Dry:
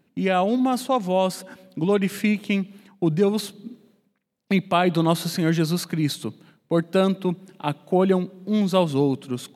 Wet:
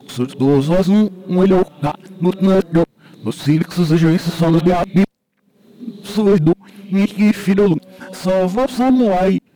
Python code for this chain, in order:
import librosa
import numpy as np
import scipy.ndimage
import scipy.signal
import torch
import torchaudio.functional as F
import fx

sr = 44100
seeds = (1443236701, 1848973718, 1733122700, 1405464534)

y = x[::-1].copy()
y = fx.cheby_harmonics(y, sr, harmonics=(6, 8), levels_db=(-22, -27), full_scale_db=-4.5)
y = fx.slew_limit(y, sr, full_power_hz=51.0)
y = y * 10.0 ** (9.0 / 20.0)